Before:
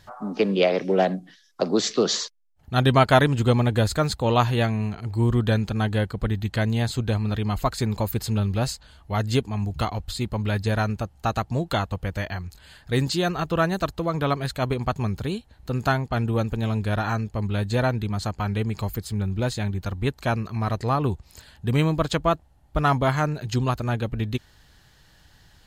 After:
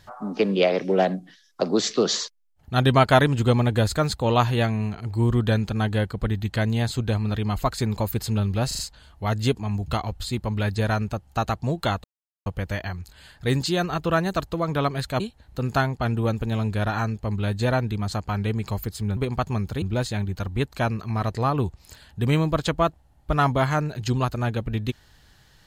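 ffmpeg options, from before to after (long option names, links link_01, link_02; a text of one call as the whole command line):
ffmpeg -i in.wav -filter_complex "[0:a]asplit=8[link_01][link_02][link_03][link_04][link_05][link_06][link_07][link_08];[link_01]atrim=end=8.712[link_09];[link_02]atrim=start=8.668:end=8.712[link_10];[link_03]atrim=start=8.668:end=8.712[link_11];[link_04]atrim=start=8.668:end=11.92,asetpts=PTS-STARTPTS,afade=type=out:start_time=3.248:duration=0.004:curve=hsin,apad=pad_dur=0.42[link_12];[link_05]atrim=start=11.92:end=14.662,asetpts=PTS-STARTPTS,afade=type=in:duration=0.004:curve=hsin[link_13];[link_06]atrim=start=15.308:end=19.282[link_14];[link_07]atrim=start=14.658:end=15.312[link_15];[link_08]atrim=start=19.278[link_16];[link_09][link_10]acrossfade=duration=0.004:curve1=hsin:curve2=hsin[link_17];[link_17][link_11]acrossfade=duration=0.004:curve1=hsin:curve2=hsin[link_18];[link_12][link_13]concat=n=2:v=0:a=1[link_19];[link_18][link_19]acrossfade=duration=0.004:curve1=hsin:curve2=hsin[link_20];[link_20][link_14]acrossfade=duration=0.004:curve1=hsin:curve2=hsin[link_21];[link_21][link_15]acrossfade=duration=0.004:curve1=hsin:curve2=hsin[link_22];[link_22][link_16]acrossfade=duration=0.004:curve1=hsin:curve2=hsin" out.wav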